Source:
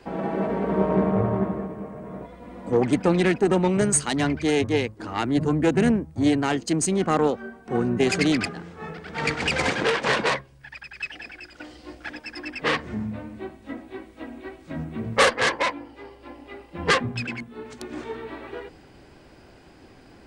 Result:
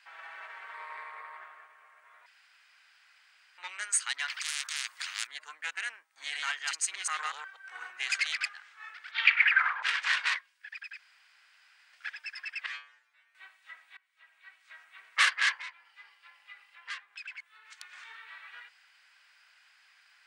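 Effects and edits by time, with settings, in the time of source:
0.74–1.37 ripple EQ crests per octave 0.96, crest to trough 7 dB
2.26–3.58 room tone
4.28–5.27 spectral compressor 10:1
5.98–8 reverse delay 0.122 s, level -1 dB
9.11–9.82 synth low-pass 4200 Hz -> 910 Hz
10.99–11.93 room tone
12.66–13.35 metallic resonator 64 Hz, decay 0.73 s, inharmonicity 0.002
13.97–14.89 fade in, from -22.5 dB
15.6–17.67 compressor 2.5:1, threshold -37 dBFS
whole clip: HPF 1500 Hz 24 dB/oct; high shelf 3700 Hz -7.5 dB

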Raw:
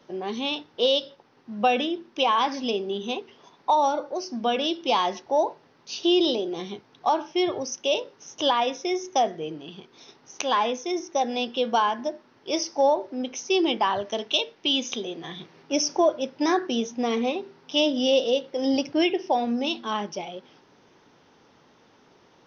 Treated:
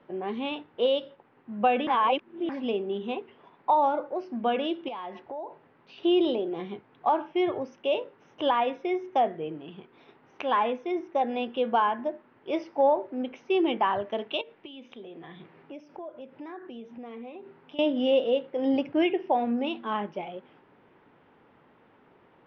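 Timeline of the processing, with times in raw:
1.87–2.49 reverse
4.88–5.98 compressor 4:1, threshold -34 dBFS
14.41–17.79 compressor 4:1, threshold -39 dBFS
whole clip: LPF 2600 Hz 24 dB/oct; gain -1.5 dB

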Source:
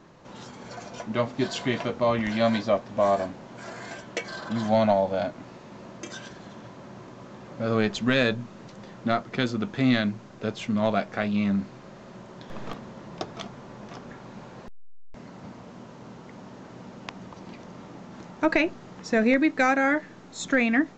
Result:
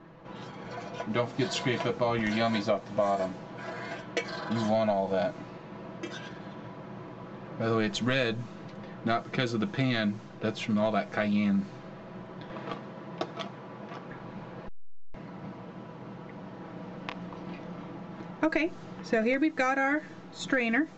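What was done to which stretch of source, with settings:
12.5–14.11 HPF 150 Hz 6 dB/oct
16.58–17.91 doubler 28 ms -6.5 dB
whole clip: low-pass opened by the level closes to 2500 Hz, open at -22.5 dBFS; comb 6.1 ms, depth 49%; compressor, threshold -23 dBFS

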